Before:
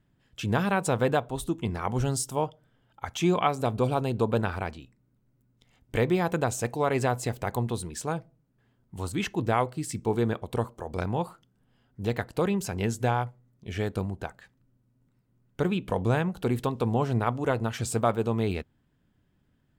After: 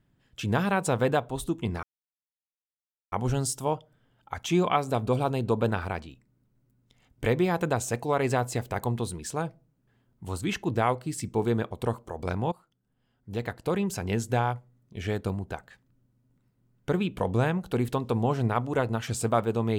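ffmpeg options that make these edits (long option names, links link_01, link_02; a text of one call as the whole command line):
ffmpeg -i in.wav -filter_complex "[0:a]asplit=3[link_01][link_02][link_03];[link_01]atrim=end=1.83,asetpts=PTS-STARTPTS,afade=type=out:start_time=1.826:duration=0.004:curve=hsin,apad=pad_dur=1.29[link_04];[link_02]atrim=start=1.83:end=11.23,asetpts=PTS-STARTPTS,afade=type=in:duration=0.004:curve=hsin,afade=type=out:start_time=9.396:duration=0.004:curve=hsin:silence=0.188365[link_05];[link_03]atrim=start=11.23,asetpts=PTS-STARTPTS,afade=type=in:duration=1.46:silence=0.188365[link_06];[link_04][link_05][link_06]concat=n=3:v=0:a=1" out.wav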